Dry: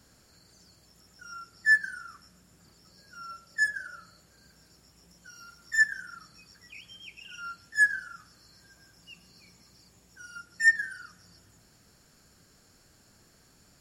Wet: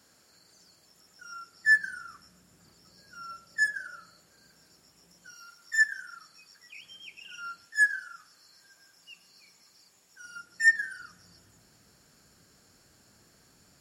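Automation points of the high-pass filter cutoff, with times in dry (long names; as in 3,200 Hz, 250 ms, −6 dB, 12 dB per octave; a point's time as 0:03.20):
high-pass filter 6 dB per octave
350 Hz
from 0:01.66 95 Hz
from 0:03.67 220 Hz
from 0:05.34 710 Hz
from 0:06.80 330 Hz
from 0:07.65 790 Hz
from 0:10.25 250 Hz
from 0:11.00 73 Hz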